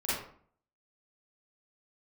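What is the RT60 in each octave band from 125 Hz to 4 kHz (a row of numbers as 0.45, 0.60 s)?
0.65, 0.65, 0.50, 0.55, 0.45, 0.35 s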